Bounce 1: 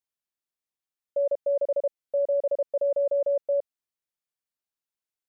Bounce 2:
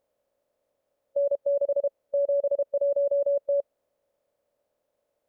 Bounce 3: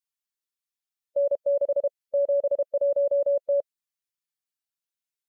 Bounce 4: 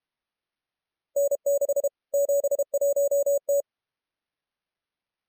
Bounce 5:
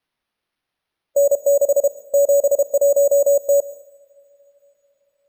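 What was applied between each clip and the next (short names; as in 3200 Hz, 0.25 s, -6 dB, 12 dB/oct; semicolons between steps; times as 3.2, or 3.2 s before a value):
per-bin compression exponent 0.6
per-bin expansion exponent 2; gain +2 dB
sample-and-hold 6×
reverb, pre-delay 0.107 s, DRR 15 dB; gain +8.5 dB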